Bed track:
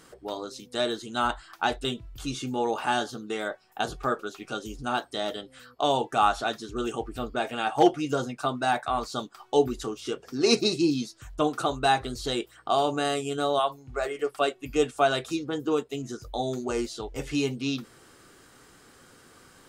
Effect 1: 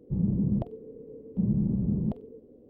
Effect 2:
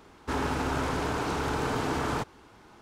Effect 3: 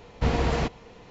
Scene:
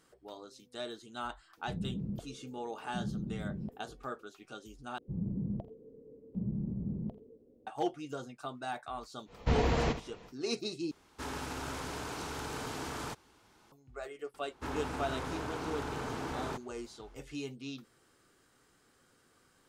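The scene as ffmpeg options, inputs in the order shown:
ffmpeg -i bed.wav -i cue0.wav -i cue1.wav -i cue2.wav -filter_complex "[1:a]asplit=2[link_01][link_02];[2:a]asplit=2[link_03][link_04];[0:a]volume=-13.5dB[link_05];[link_02]aecho=1:1:82:0.119[link_06];[3:a]aecho=1:1:72:0.299[link_07];[link_03]highshelf=frequency=3100:gain=10.5[link_08];[link_05]asplit=3[link_09][link_10][link_11];[link_09]atrim=end=4.984[link_12];[link_06]atrim=end=2.69,asetpts=PTS-STARTPTS,volume=-9.5dB[link_13];[link_10]atrim=start=7.666:end=10.914[link_14];[link_08]atrim=end=2.81,asetpts=PTS-STARTPTS,volume=-11.5dB[link_15];[link_11]atrim=start=13.716[link_16];[link_01]atrim=end=2.69,asetpts=PTS-STARTPTS,volume=-11.5dB,afade=type=in:duration=0.004:curve=hsin,afade=type=out:start_time=2.686:duration=0.004:curve=hsin,adelay=1570[link_17];[link_07]atrim=end=1.1,asetpts=PTS-STARTPTS,volume=-4.5dB,afade=type=in:duration=0.1,afade=type=out:start_time=1:duration=0.1,adelay=9250[link_18];[link_04]atrim=end=2.81,asetpts=PTS-STARTPTS,volume=-9dB,afade=type=in:duration=0.004:curve=hsin,afade=type=out:start_time=2.806:duration=0.004:curve=hsin,adelay=14340[link_19];[link_12][link_13]acrossfade=duration=0.004:curve1=hsin:curve2=hsin[link_20];[link_20][link_14]acrossfade=duration=0.004:curve1=hsin:curve2=hsin[link_21];[link_21][link_15]acrossfade=duration=0.004:curve1=hsin:curve2=hsin[link_22];[link_22][link_16]acrossfade=duration=0.004:curve1=hsin:curve2=hsin[link_23];[link_23][link_17][link_18][link_19]amix=inputs=4:normalize=0" out.wav

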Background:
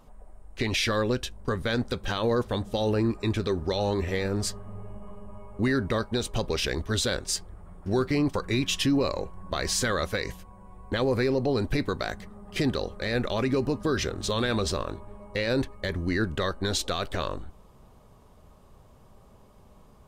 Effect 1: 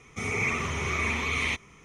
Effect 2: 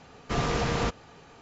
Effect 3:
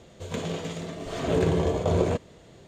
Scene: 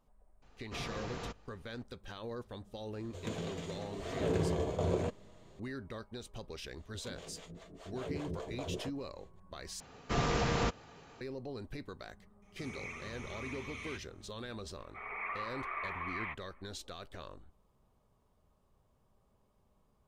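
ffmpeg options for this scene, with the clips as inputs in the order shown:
ffmpeg -i bed.wav -i cue0.wav -i cue1.wav -i cue2.wav -filter_complex "[2:a]asplit=2[link_01][link_02];[3:a]asplit=2[link_03][link_04];[1:a]asplit=2[link_05][link_06];[0:a]volume=-17.5dB[link_07];[link_04]acrossover=split=460[link_08][link_09];[link_08]aeval=exprs='val(0)*(1-1/2+1/2*cos(2*PI*5*n/s))':channel_layout=same[link_10];[link_09]aeval=exprs='val(0)*(1-1/2-1/2*cos(2*PI*5*n/s))':channel_layout=same[link_11];[link_10][link_11]amix=inputs=2:normalize=0[link_12];[link_06]highpass=frequency=460:width=0.5412,highpass=frequency=460:width=1.3066,equalizer=frequency=460:width_type=q:width=4:gain=-7,equalizer=frequency=700:width_type=q:width=4:gain=4,equalizer=frequency=1100:width_type=q:width=4:gain=7,equalizer=frequency=1700:width_type=q:width=4:gain=5,lowpass=frequency=2100:width=0.5412,lowpass=frequency=2100:width=1.3066[link_13];[link_07]asplit=2[link_14][link_15];[link_14]atrim=end=9.804[link_16];[link_02]atrim=end=1.41,asetpts=PTS-STARTPTS,volume=-4dB[link_17];[link_15]atrim=start=11.206[link_18];[link_01]atrim=end=1.41,asetpts=PTS-STARTPTS,volume=-15dB,afade=type=in:duration=0.004:curve=hsin,afade=type=out:start_time=1.406:duration=0.004:curve=hsin,adelay=420[link_19];[link_03]atrim=end=2.67,asetpts=PTS-STARTPTS,volume=-9dB,afade=type=in:duration=0.004:curve=hsin,afade=type=out:start_time=2.666:duration=0.004:curve=hsin,adelay=2930[link_20];[link_12]atrim=end=2.67,asetpts=PTS-STARTPTS,volume=-12.5dB,afade=type=in:duration=0.004:curve=hsin,afade=type=out:start_time=2.666:duration=0.004:curve=hsin,adelay=6730[link_21];[link_05]atrim=end=1.84,asetpts=PTS-STARTPTS,volume=-17.5dB,afade=type=in:duration=0.004:curve=hsin,afade=type=out:start_time=1.836:duration=0.004:curve=hsin,adelay=12420[link_22];[link_13]atrim=end=1.84,asetpts=PTS-STARTPTS,volume=-10.5dB,afade=type=in:duration=0.004:curve=hsin,afade=type=out:start_time=1.836:duration=0.004:curve=hsin,adelay=14780[link_23];[link_16][link_17]acrossfade=duration=0.004:curve1=hsin:curve2=hsin[link_24];[link_24][link_18]acrossfade=duration=0.004:curve1=hsin:curve2=hsin[link_25];[link_25][link_19][link_20][link_21][link_22][link_23]amix=inputs=6:normalize=0" out.wav

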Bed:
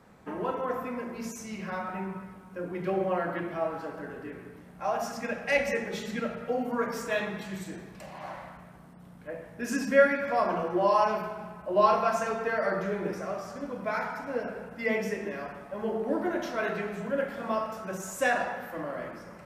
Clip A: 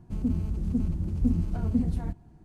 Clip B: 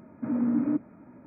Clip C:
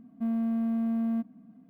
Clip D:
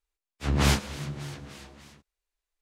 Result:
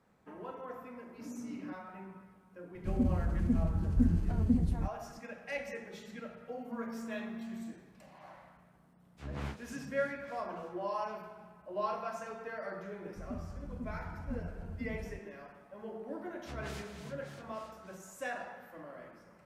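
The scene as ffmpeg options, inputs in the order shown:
ffmpeg -i bed.wav -i cue0.wav -i cue1.wav -i cue2.wav -i cue3.wav -filter_complex "[1:a]asplit=2[link_01][link_02];[4:a]asplit=2[link_03][link_04];[0:a]volume=-13dB[link_05];[link_03]acrossover=split=2500[link_06][link_07];[link_07]acompressor=threshold=-44dB:ratio=4:attack=1:release=60[link_08];[link_06][link_08]amix=inputs=2:normalize=0[link_09];[link_04]acompressor=threshold=-26dB:ratio=6:attack=3.2:release=140:knee=1:detection=peak[link_10];[2:a]atrim=end=1.26,asetpts=PTS-STARTPTS,volume=-17.5dB,afade=type=in:duration=0.004:curve=hsin,afade=type=out:start_time=1.256:duration=0.004:curve=hsin,adelay=960[link_11];[link_01]atrim=end=2.44,asetpts=PTS-STARTPTS,volume=-2.5dB,afade=type=in:duration=0.004:curve=hsin,afade=type=out:start_time=2.436:duration=0.004:curve=hsin,adelay=2750[link_12];[3:a]atrim=end=1.69,asetpts=PTS-STARTPTS,volume=-14.5dB,afade=type=in:duration=0.004:curve=hsin,afade=type=out:start_time=1.686:duration=0.004:curve=hsin,adelay=286650S[link_13];[link_09]atrim=end=2.61,asetpts=PTS-STARTPTS,volume=-16.5dB,afade=type=in:duration=0.004:curve=hsin,afade=type=out:start_time=2.606:duration=0.004:curve=hsin,adelay=8770[link_14];[link_02]atrim=end=2.44,asetpts=PTS-STARTPTS,volume=-15dB,afade=type=in:duration=0.004:curve=hsin,afade=type=out:start_time=2.436:duration=0.004:curve=hsin,adelay=13060[link_15];[link_10]atrim=end=2.61,asetpts=PTS-STARTPTS,volume=-13.5dB,afade=type=in:duration=0.004:curve=hsin,afade=type=out:start_time=2.606:duration=0.004:curve=hsin,adelay=16050[link_16];[link_05][link_11][link_12][link_13][link_14][link_15][link_16]amix=inputs=7:normalize=0" out.wav

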